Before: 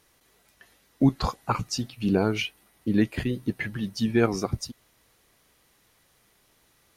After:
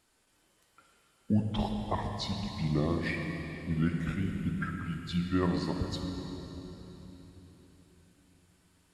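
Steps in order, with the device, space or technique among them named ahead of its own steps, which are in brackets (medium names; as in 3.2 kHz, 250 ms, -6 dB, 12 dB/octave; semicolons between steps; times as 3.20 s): slowed and reverbed (tape speed -22%; reverberation RT60 3.8 s, pre-delay 45 ms, DRR 3 dB); trim -7.5 dB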